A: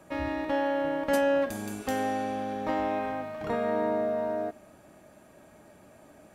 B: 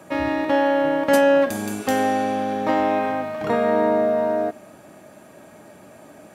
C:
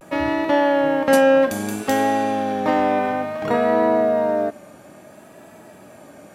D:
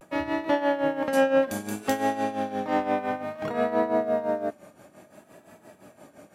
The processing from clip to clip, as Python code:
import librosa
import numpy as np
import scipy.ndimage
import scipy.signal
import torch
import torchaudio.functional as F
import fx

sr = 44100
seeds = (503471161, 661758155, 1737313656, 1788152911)

y1 = scipy.signal.sosfilt(scipy.signal.butter(2, 110.0, 'highpass', fs=sr, output='sos'), x)
y1 = y1 * librosa.db_to_amplitude(9.0)
y2 = fx.vibrato(y1, sr, rate_hz=0.59, depth_cents=59.0)
y2 = y2 * librosa.db_to_amplitude(1.5)
y3 = y2 * (1.0 - 0.73 / 2.0 + 0.73 / 2.0 * np.cos(2.0 * np.pi * 5.8 * (np.arange(len(y2)) / sr)))
y3 = y3 * librosa.db_to_amplitude(-4.0)